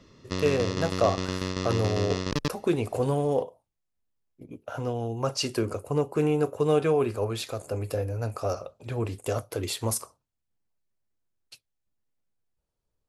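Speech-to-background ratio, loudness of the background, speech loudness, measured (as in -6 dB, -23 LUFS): 3.0 dB, -31.5 LUFS, -28.5 LUFS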